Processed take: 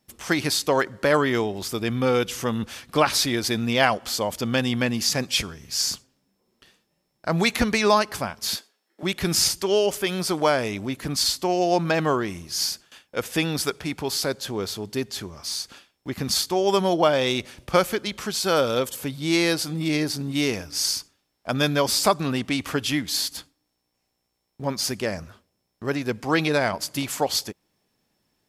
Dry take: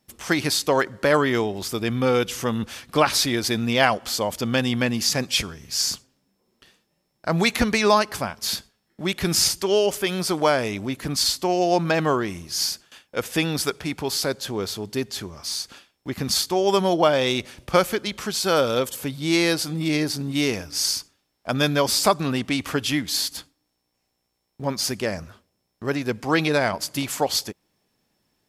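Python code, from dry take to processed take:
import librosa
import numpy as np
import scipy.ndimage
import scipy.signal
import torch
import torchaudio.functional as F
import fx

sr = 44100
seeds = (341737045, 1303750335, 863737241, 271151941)

y = fx.highpass(x, sr, hz=300.0, slope=24, at=(8.56, 9.03))
y = y * librosa.db_to_amplitude(-1.0)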